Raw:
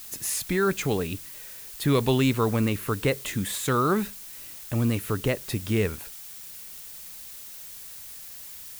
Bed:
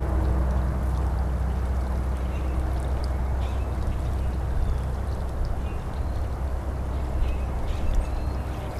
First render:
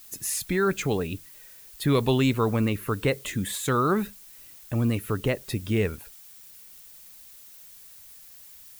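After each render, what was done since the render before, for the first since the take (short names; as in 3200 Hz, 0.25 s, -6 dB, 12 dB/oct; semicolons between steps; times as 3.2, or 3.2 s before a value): denoiser 8 dB, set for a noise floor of -42 dBFS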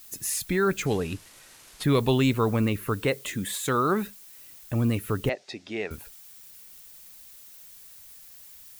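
0.86–1.84 CVSD 64 kbps; 3.02–4.49 low shelf 110 Hz -9.5 dB; 5.29–5.91 speaker cabinet 420–5800 Hz, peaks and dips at 480 Hz -6 dB, 730 Hz +7 dB, 1100 Hz -7 dB, 1500 Hz -4 dB, 3100 Hz -5 dB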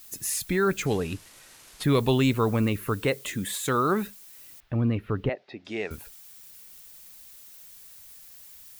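4.6–5.65 air absorption 340 m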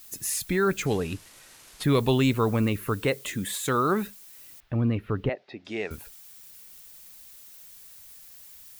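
nothing audible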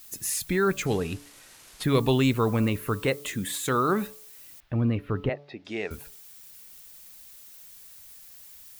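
de-hum 143.9 Hz, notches 9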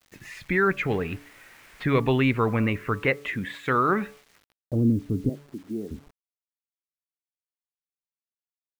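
low-pass sweep 2100 Hz -> 270 Hz, 4.3–4.93; bit-crush 9-bit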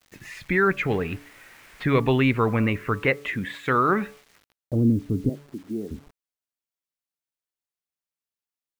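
gain +1.5 dB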